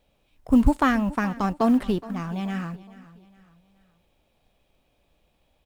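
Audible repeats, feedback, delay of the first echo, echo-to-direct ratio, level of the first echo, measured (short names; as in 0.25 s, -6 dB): 3, 41%, 0.422 s, -17.5 dB, -18.5 dB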